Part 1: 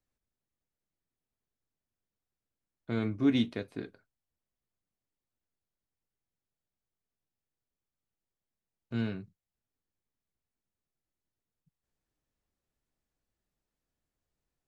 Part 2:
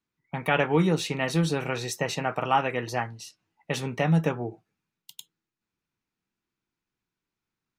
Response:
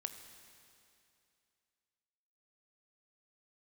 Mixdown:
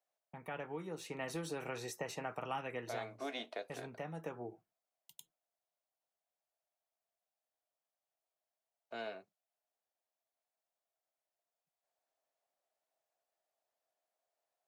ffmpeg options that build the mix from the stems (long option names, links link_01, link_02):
-filter_complex "[0:a]highpass=frequency=660:width_type=q:width=5.7,volume=-3.5dB[link_01];[1:a]agate=range=-33dB:threshold=-48dB:ratio=3:detection=peak,equalizer=frequency=3700:width=0.74:gain=-9,volume=3dB,afade=type=in:start_time=0.9:duration=0.47:silence=0.281838,afade=type=out:start_time=2.77:duration=0.41:silence=0.354813,afade=type=in:start_time=4.11:duration=0.62:silence=0.398107[link_02];[link_01][link_02]amix=inputs=2:normalize=0,acrossover=split=300|2400[link_03][link_04][link_05];[link_03]acompressor=threshold=-53dB:ratio=4[link_06];[link_04]acompressor=threshold=-40dB:ratio=4[link_07];[link_05]acompressor=threshold=-46dB:ratio=4[link_08];[link_06][link_07][link_08]amix=inputs=3:normalize=0"